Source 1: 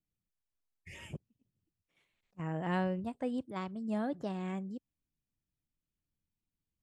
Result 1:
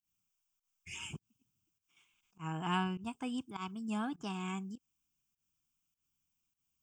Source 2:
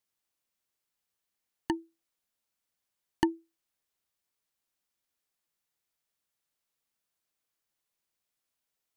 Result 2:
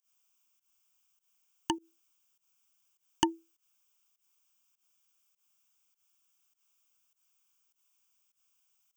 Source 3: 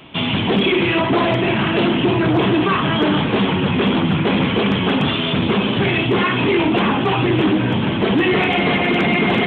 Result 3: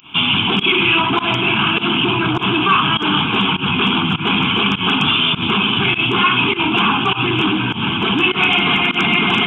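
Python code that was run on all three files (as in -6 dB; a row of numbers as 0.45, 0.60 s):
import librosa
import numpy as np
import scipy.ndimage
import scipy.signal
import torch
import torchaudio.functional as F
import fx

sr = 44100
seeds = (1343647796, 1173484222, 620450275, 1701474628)

y = fx.tilt_eq(x, sr, slope=2.5)
y = fx.fixed_phaser(y, sr, hz=2800.0, stages=8)
y = fx.volume_shaper(y, sr, bpm=101, per_beat=1, depth_db=-21, release_ms=116.0, shape='fast start')
y = y * librosa.db_to_amplitude(5.5)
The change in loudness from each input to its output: -2.0, -0.5, +2.0 LU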